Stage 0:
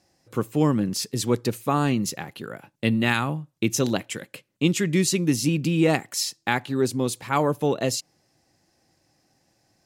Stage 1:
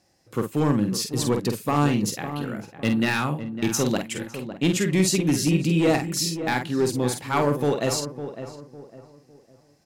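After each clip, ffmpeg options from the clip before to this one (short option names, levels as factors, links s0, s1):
-filter_complex "[0:a]volume=5.62,asoftclip=hard,volume=0.178,asplit=2[s0][s1];[s1]adelay=48,volume=0.473[s2];[s0][s2]amix=inputs=2:normalize=0,asplit=2[s3][s4];[s4]adelay=555,lowpass=f=1300:p=1,volume=0.316,asplit=2[s5][s6];[s6]adelay=555,lowpass=f=1300:p=1,volume=0.35,asplit=2[s7][s8];[s8]adelay=555,lowpass=f=1300:p=1,volume=0.35,asplit=2[s9][s10];[s10]adelay=555,lowpass=f=1300:p=1,volume=0.35[s11];[s5][s7][s9][s11]amix=inputs=4:normalize=0[s12];[s3][s12]amix=inputs=2:normalize=0"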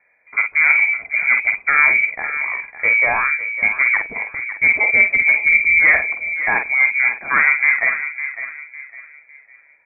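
-af "lowpass=f=2100:t=q:w=0.5098,lowpass=f=2100:t=q:w=0.6013,lowpass=f=2100:t=q:w=0.9,lowpass=f=2100:t=q:w=2.563,afreqshift=-2500,volume=2.24"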